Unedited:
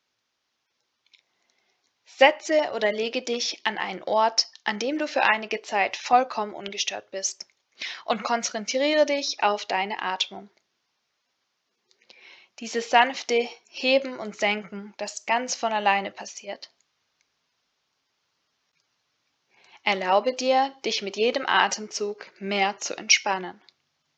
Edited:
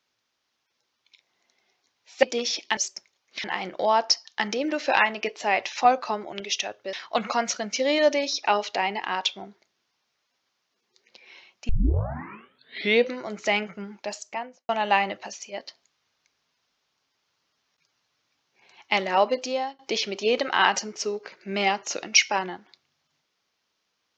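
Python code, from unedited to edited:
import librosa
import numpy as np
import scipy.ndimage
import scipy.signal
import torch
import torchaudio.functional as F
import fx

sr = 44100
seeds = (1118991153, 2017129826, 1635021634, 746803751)

y = fx.studio_fade_out(x, sr, start_s=14.99, length_s=0.65)
y = fx.edit(y, sr, fx.cut(start_s=2.23, length_s=0.95),
    fx.move(start_s=7.21, length_s=0.67, to_s=3.72),
    fx.tape_start(start_s=12.64, length_s=1.48),
    fx.fade_out_to(start_s=20.25, length_s=0.49, floor_db=-22.5), tone=tone)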